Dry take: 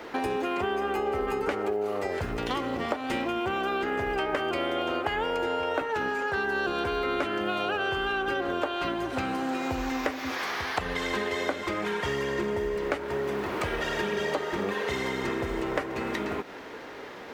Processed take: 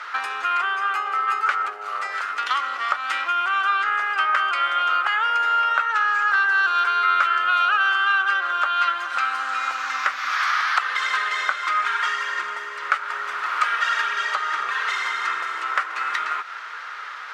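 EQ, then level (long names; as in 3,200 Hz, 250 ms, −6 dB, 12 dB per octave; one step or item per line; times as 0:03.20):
high-pass with resonance 1,300 Hz, resonance Q 5.8
high-frequency loss of the air 61 metres
high-shelf EQ 2,700 Hz +9.5 dB
+1.0 dB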